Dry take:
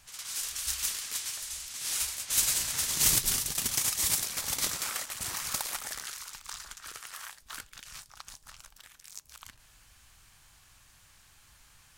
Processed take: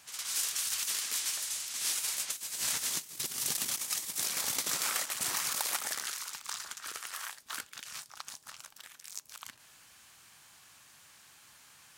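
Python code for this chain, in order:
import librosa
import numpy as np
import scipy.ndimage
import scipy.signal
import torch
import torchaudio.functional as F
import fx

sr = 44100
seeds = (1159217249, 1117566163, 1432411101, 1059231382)

y = scipy.signal.sosfilt(scipy.signal.butter(2, 190.0, 'highpass', fs=sr, output='sos'), x)
y = fx.over_compress(y, sr, threshold_db=-33.0, ratio=-0.5)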